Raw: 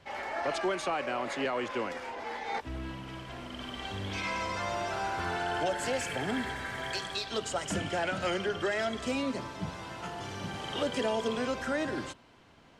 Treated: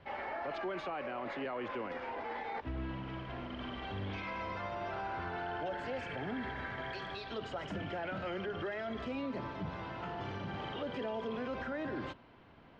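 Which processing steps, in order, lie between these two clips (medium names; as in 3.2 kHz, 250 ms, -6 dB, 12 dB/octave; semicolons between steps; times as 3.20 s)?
peak limiter -31 dBFS, peak gain reduction 9 dB; distance through air 310 m; trim +1 dB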